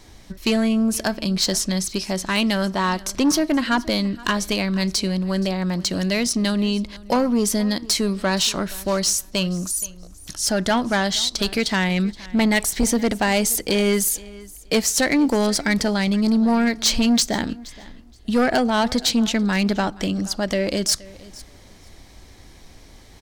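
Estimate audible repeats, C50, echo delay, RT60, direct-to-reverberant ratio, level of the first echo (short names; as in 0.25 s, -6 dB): 1, none, 0.473 s, none, none, -21.0 dB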